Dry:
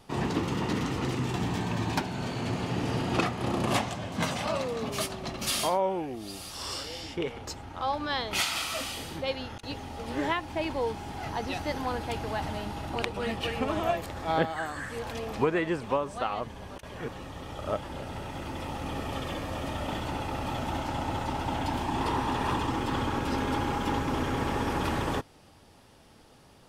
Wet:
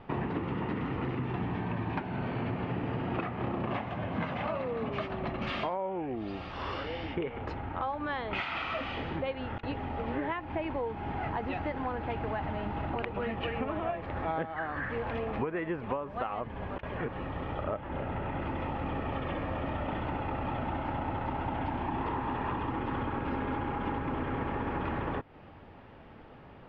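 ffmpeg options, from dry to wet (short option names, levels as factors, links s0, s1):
-filter_complex "[0:a]asettb=1/sr,asplit=3[s0][s1][s2];[s0]atrim=end=17.634[s3];[s1]atrim=start=17.63:end=18.4,asetpts=PTS-STARTPTS,afade=t=in:d=0.004:c=qsin,afade=t=out:st=0.766:d=0.004:c=qsin,lowpass=3700[s4];[s2]atrim=start=18.396[s5];[s3][s4]acrossfade=d=0.004:c1=hsin:c2=qsin[s6];[s6][s5]acrossfade=d=0.004:c1=qsin:c2=hsin,lowpass=f=2500:w=0.5412,lowpass=f=2500:w=1.3066,acompressor=threshold=0.0158:ratio=6,volume=1.88"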